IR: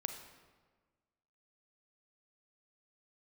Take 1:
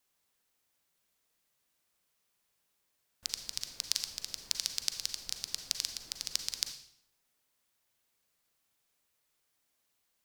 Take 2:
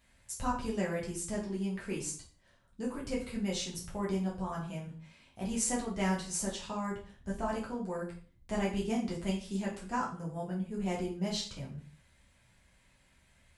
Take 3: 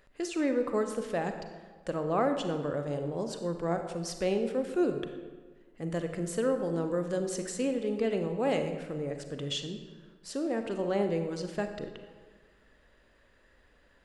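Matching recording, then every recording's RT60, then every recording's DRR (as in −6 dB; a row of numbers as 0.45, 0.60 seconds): 3; 0.65, 0.40, 1.4 seconds; 7.0, −5.0, 6.0 decibels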